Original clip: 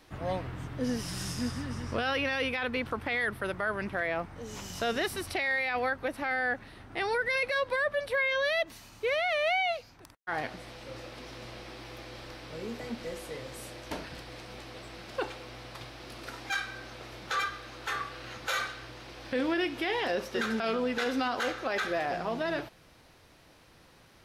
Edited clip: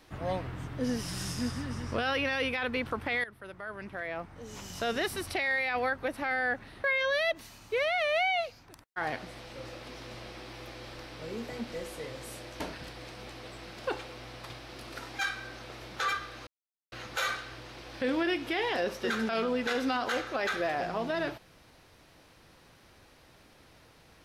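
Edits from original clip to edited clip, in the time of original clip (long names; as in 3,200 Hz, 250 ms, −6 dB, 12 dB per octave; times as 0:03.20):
0:03.24–0:05.13: fade in, from −16.5 dB
0:06.84–0:08.15: remove
0:17.78–0:18.23: silence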